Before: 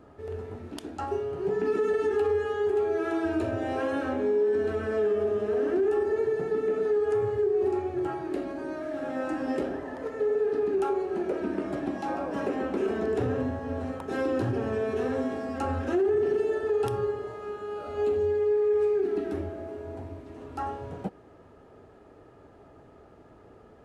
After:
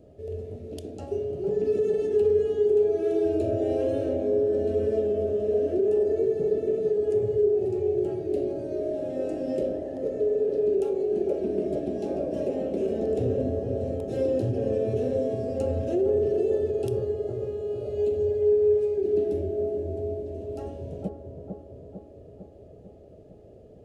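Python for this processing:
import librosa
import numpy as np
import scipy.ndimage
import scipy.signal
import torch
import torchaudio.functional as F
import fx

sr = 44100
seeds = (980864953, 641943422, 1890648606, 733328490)

y = fx.curve_eq(x, sr, hz=(180.0, 280.0, 620.0, 890.0, 1300.0, 2700.0, 6700.0), db=(0, -5, 2, -21, -25, -8, -4))
y = fx.echo_bbd(y, sr, ms=451, stages=4096, feedback_pct=60, wet_db=-5.5)
y = y * 10.0 ** (2.5 / 20.0)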